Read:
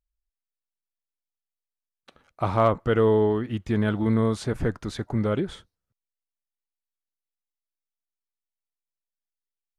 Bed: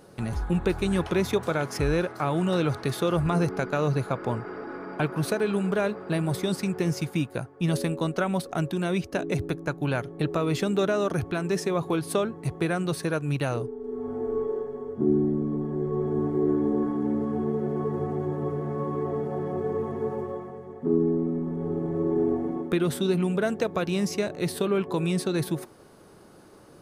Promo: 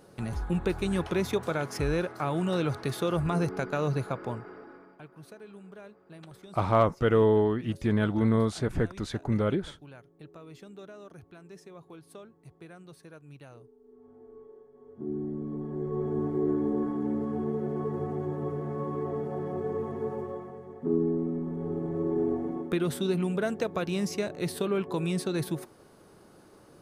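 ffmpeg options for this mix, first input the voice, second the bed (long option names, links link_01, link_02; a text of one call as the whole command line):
ffmpeg -i stem1.wav -i stem2.wav -filter_complex "[0:a]adelay=4150,volume=-2dB[link_01];[1:a]volume=15dB,afade=type=out:start_time=4.01:duration=0.97:silence=0.11885,afade=type=in:start_time=14.72:duration=1.3:silence=0.11885[link_02];[link_01][link_02]amix=inputs=2:normalize=0" out.wav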